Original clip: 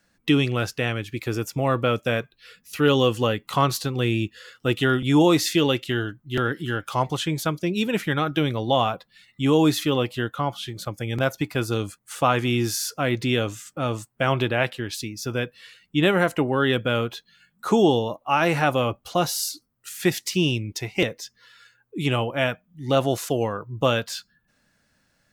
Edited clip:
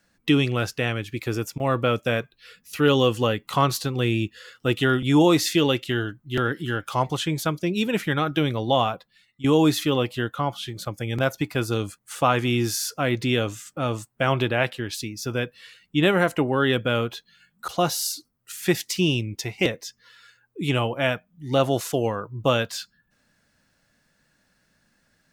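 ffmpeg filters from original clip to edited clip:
-filter_complex "[0:a]asplit=5[s0][s1][s2][s3][s4];[s0]atrim=end=1.58,asetpts=PTS-STARTPTS,afade=t=out:st=1.32:d=0.26:c=log:silence=0.0841395[s5];[s1]atrim=start=1.58:end=1.6,asetpts=PTS-STARTPTS,volume=0.0841[s6];[s2]atrim=start=1.6:end=9.44,asetpts=PTS-STARTPTS,afade=t=in:d=0.26:c=log:silence=0.0841395,afade=t=out:st=7.2:d=0.64:silence=0.16788[s7];[s3]atrim=start=9.44:end=17.682,asetpts=PTS-STARTPTS,afade=t=in:d=0.004:c=hsin:silence=0.16788[s8];[s4]atrim=start=19.048[s9];[s5][s6][s7][s8]concat=n=4:v=0:a=1[s10];[s10][s9]acrossfade=d=0.004:c1=hsin:c2=hsin"

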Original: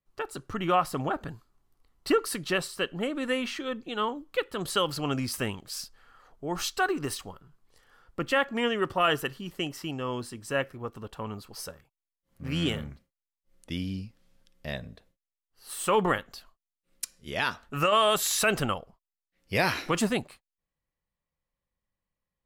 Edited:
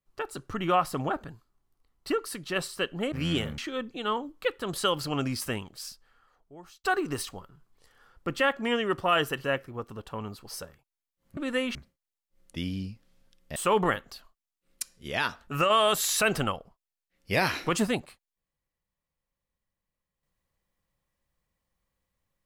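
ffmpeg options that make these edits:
-filter_complex "[0:a]asplit=10[s0][s1][s2][s3][s4][s5][s6][s7][s8][s9];[s0]atrim=end=1.232[s10];[s1]atrim=start=1.228:end=2.562,asetpts=PTS-STARTPTS,volume=0.596[s11];[s2]atrim=start=2.558:end=3.122[s12];[s3]atrim=start=12.428:end=12.892[s13];[s4]atrim=start=3.498:end=6.76,asetpts=PTS-STARTPTS,afade=t=out:st=1.742:d=1.52[s14];[s5]atrim=start=6.76:end=9.362,asetpts=PTS-STARTPTS,afade=t=in:d=0.004:c=hsin[s15];[s6]atrim=start=10.498:end=12.432[s16];[s7]atrim=start=3.118:end=3.502[s17];[s8]atrim=start=12.888:end=14.702[s18];[s9]atrim=start=15.778[s19];[s10][s11]acrossfade=d=0.004:c1=hsin:c2=hsin[s20];[s20][s12]acrossfade=d=0.004:c1=hsin:c2=hsin[s21];[s21][s13]acrossfade=d=0.004:c1=hsin:c2=hsin[s22];[s14][s15]concat=n=2:v=0:a=1[s23];[s22][s23]acrossfade=d=0.004:c1=hsin:c2=hsin[s24];[s24][s16]acrossfade=d=0.004:c1=hsin:c2=hsin[s25];[s25][s17]acrossfade=d=0.004:c1=hsin:c2=hsin[s26];[s26][s18]acrossfade=d=0.004:c1=hsin:c2=hsin[s27];[s27][s19]acrossfade=d=0.004:c1=hsin:c2=hsin"

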